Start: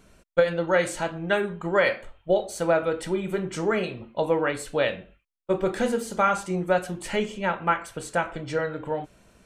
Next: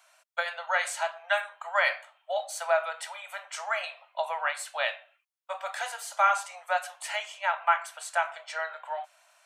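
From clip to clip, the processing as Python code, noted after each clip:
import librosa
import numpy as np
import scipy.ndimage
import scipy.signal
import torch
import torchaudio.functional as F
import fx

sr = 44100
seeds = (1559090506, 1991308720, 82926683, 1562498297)

y = scipy.signal.sosfilt(scipy.signal.butter(12, 630.0, 'highpass', fs=sr, output='sos'), x)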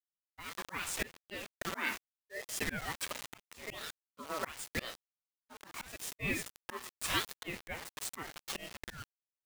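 y = fx.quant_dither(x, sr, seeds[0], bits=6, dither='none')
y = fx.auto_swell(y, sr, attack_ms=337.0)
y = fx.ring_lfo(y, sr, carrier_hz=790.0, swing_pct=60, hz=0.81)
y = F.gain(torch.from_numpy(y), 2.5).numpy()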